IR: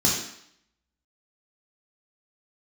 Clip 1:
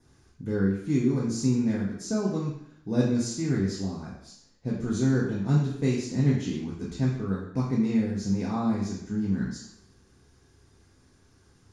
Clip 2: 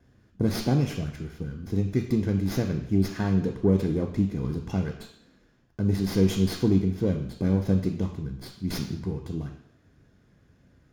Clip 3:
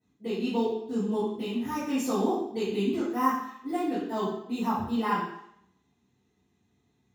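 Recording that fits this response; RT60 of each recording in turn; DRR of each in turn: 1; 0.70 s, 0.70 s, 0.70 s; -4.5 dB, 4.0 dB, -14.5 dB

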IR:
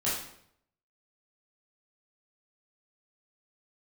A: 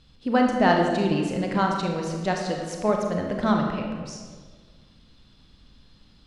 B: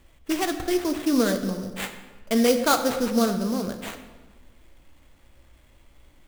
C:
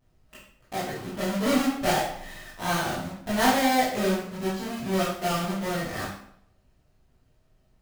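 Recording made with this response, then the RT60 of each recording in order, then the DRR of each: C; 1.6 s, 1.2 s, 0.70 s; 1.0 dB, 6.5 dB, -9.5 dB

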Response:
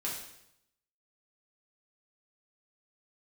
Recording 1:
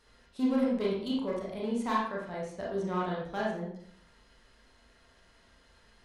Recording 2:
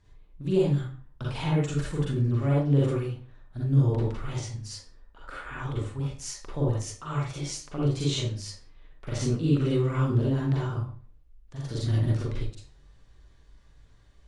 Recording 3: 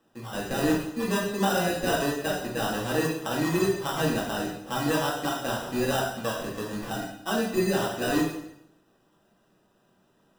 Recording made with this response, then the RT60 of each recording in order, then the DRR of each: 3; 0.60 s, 0.45 s, 0.80 s; -5.0 dB, -5.5 dB, -5.5 dB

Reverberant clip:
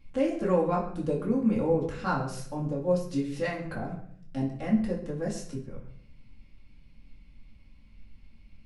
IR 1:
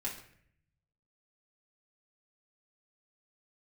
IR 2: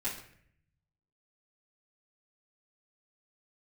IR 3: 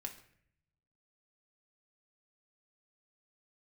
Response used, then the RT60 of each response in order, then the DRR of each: 1; 0.60 s, 0.60 s, 0.60 s; -5.0 dB, -11.5 dB, 2.5 dB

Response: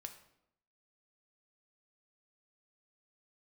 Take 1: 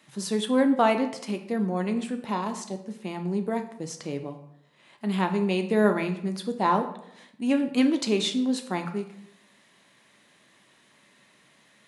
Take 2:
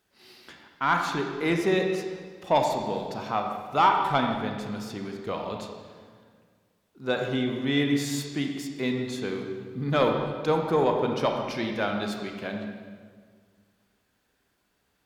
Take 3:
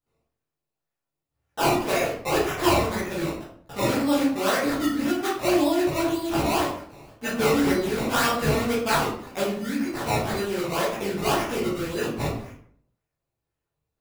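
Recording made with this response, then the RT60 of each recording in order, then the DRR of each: 1; 0.80 s, 1.8 s, 0.60 s; 5.5 dB, 2.5 dB, -8.5 dB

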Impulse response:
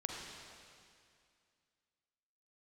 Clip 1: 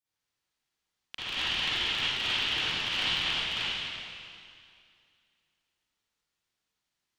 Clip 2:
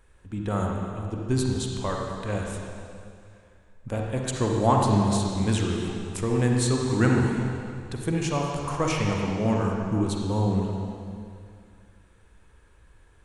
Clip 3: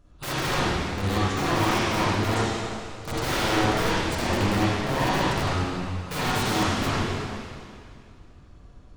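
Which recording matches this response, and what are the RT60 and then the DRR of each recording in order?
2; 2.3 s, 2.3 s, 2.3 s; -14.5 dB, -0.5 dB, -9.5 dB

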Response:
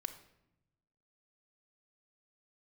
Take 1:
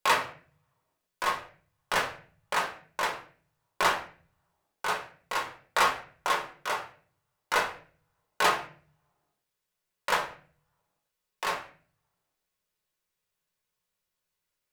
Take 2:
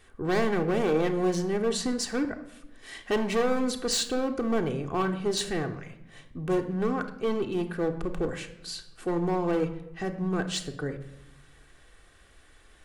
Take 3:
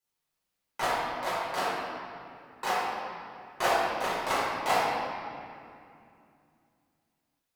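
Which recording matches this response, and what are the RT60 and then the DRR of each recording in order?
2; 0.45 s, 0.80 s, 2.5 s; -0.5 dB, 4.5 dB, -11.0 dB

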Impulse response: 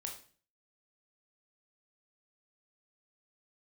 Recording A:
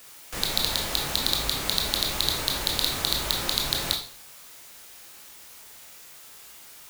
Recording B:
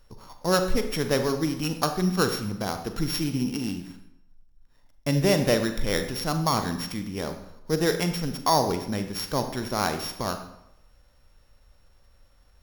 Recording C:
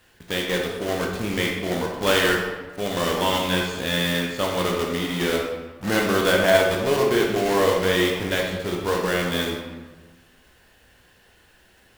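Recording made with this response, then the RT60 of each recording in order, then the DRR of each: A; 0.40 s, 0.85 s, 1.3 s; 1.0 dB, 7.0 dB, -1.0 dB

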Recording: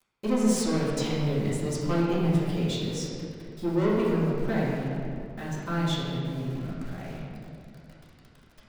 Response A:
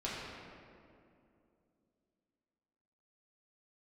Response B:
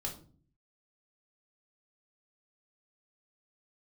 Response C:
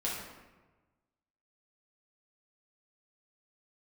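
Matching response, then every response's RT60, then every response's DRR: A; 2.6 s, 0.45 s, 1.2 s; -8.0 dB, -0.5 dB, -6.0 dB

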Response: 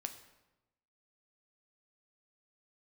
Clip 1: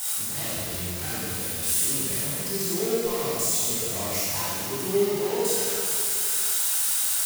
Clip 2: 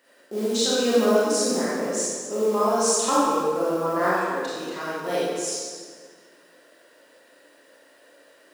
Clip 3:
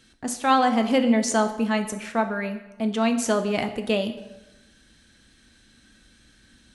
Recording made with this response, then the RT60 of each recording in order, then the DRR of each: 3; 2.4 s, 1.8 s, 1.0 s; -9.5 dB, -9.5 dB, 6.5 dB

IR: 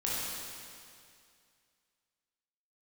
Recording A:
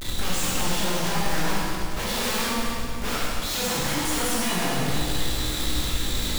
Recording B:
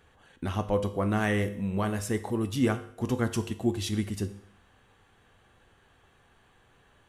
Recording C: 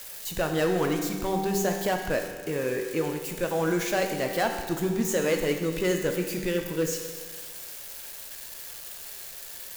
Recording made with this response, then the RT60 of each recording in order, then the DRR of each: A; 2.3 s, 0.65 s, 1.6 s; -7.0 dB, 8.5 dB, 3.0 dB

